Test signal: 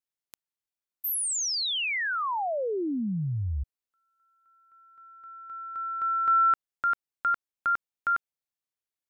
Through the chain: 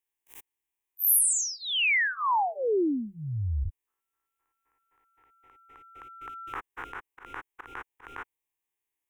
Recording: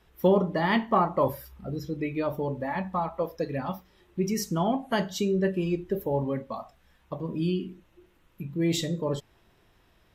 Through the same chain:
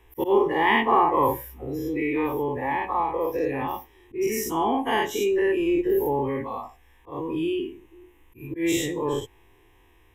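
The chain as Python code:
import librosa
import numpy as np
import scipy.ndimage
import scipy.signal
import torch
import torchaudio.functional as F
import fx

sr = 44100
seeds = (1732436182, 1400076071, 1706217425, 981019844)

y = fx.spec_dilate(x, sr, span_ms=120)
y = fx.auto_swell(y, sr, attack_ms=111.0)
y = fx.fixed_phaser(y, sr, hz=920.0, stages=8)
y = F.gain(torch.from_numpy(y), 2.5).numpy()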